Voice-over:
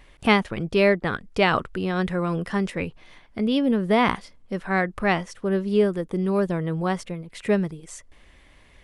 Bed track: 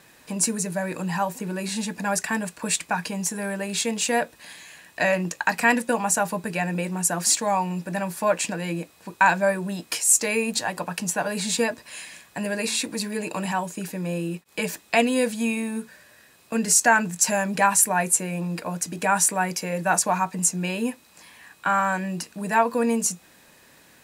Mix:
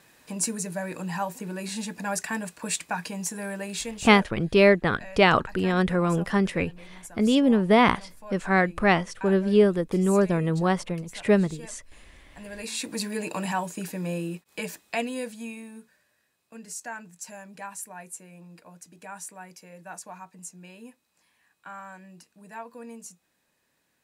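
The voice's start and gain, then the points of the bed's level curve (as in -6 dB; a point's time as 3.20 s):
3.80 s, +1.5 dB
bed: 3.69 s -4.5 dB
4.50 s -21.5 dB
12.14 s -21.5 dB
12.96 s -2 dB
14.09 s -2 dB
16.37 s -19.5 dB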